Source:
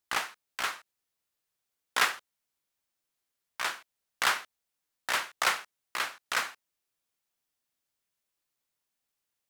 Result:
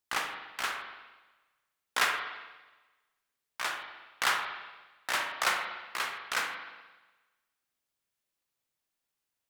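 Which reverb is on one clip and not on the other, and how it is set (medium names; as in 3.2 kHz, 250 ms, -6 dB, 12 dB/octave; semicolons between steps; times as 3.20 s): spring tank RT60 1.2 s, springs 41/58 ms, chirp 25 ms, DRR 3.5 dB; trim -2 dB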